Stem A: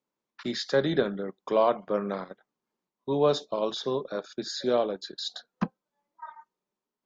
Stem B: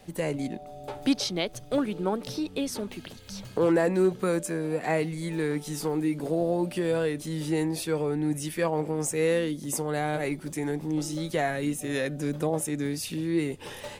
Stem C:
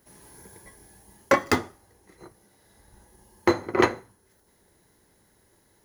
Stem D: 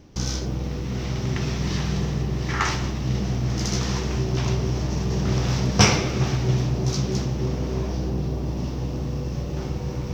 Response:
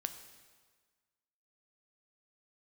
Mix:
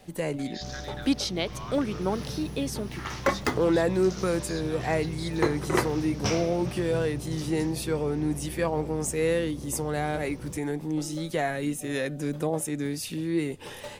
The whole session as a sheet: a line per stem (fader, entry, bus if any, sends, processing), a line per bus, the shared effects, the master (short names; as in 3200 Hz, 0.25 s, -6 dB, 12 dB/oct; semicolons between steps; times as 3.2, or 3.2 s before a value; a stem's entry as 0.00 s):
-7.5 dB, 0.00 s, no send, HPF 1200 Hz 24 dB/oct
-0.5 dB, 0.00 s, no send, dry
-5.0 dB, 1.95 s, no send, dry
-13.0 dB, 0.45 s, no send, dry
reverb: off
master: dry